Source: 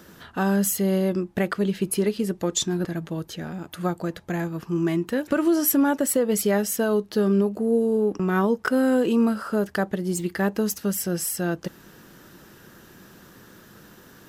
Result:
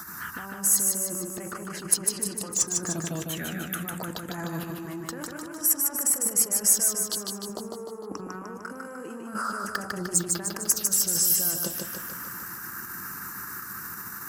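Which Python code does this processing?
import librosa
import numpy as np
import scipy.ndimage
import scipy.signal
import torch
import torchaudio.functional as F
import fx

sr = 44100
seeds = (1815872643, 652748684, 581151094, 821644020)

p1 = fx.cheby_harmonics(x, sr, harmonics=(5,), levels_db=(-20,), full_scale_db=-10.0)
p2 = fx.level_steps(p1, sr, step_db=23)
p3 = p1 + (p2 * 10.0 ** (-1.0 / 20.0))
p4 = scipy.signal.sosfilt(scipy.signal.butter(2, 47.0, 'highpass', fs=sr, output='sos'), p3)
p5 = fx.peak_eq(p4, sr, hz=1200.0, db=10.5, octaves=1.3)
p6 = fx.env_phaser(p5, sr, low_hz=460.0, high_hz=3700.0, full_db=-14.0)
p7 = fx.over_compress(p6, sr, threshold_db=-24.0, ratio=-1.0)
p8 = librosa.effects.preemphasis(p7, coef=0.8, zi=[0.0])
y = p8 + fx.echo_feedback(p8, sr, ms=151, feedback_pct=57, wet_db=-3.5, dry=0)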